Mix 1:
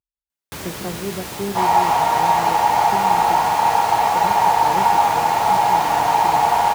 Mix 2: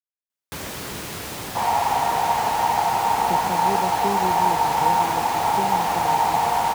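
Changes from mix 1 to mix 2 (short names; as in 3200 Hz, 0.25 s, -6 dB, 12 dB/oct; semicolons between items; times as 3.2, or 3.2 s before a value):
speech: entry +2.65 s; reverb: off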